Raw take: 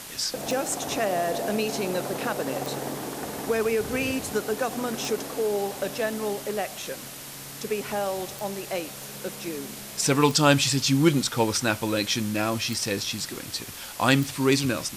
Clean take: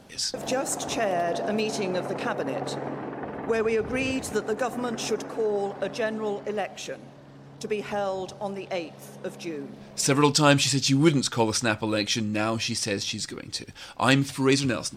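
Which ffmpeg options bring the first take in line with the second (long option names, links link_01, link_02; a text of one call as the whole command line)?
ffmpeg -i in.wav -af "adeclick=threshold=4,afwtdn=0.011" out.wav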